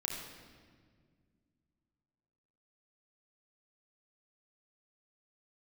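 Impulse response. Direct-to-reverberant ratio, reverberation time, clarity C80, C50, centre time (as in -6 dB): -1.0 dB, 1.8 s, 3.5 dB, 2.0 dB, 65 ms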